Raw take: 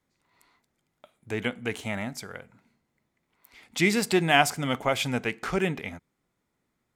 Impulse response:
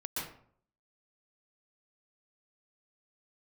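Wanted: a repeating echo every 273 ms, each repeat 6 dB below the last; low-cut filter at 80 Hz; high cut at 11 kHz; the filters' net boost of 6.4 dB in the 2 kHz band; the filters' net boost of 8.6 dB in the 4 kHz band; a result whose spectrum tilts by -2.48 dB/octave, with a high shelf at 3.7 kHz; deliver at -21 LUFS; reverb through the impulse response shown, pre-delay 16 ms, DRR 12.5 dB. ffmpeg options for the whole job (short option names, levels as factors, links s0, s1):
-filter_complex "[0:a]highpass=80,lowpass=11000,equalizer=f=2000:t=o:g=4,highshelf=f=3700:g=9,equalizer=f=4000:t=o:g=4.5,aecho=1:1:273|546|819|1092|1365|1638:0.501|0.251|0.125|0.0626|0.0313|0.0157,asplit=2[s0][s1];[1:a]atrim=start_sample=2205,adelay=16[s2];[s1][s2]afir=irnorm=-1:irlink=0,volume=0.168[s3];[s0][s3]amix=inputs=2:normalize=0"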